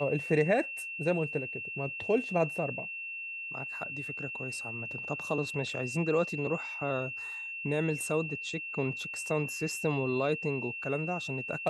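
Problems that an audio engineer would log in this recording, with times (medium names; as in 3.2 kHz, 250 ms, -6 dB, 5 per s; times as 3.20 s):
whine 2.7 kHz -37 dBFS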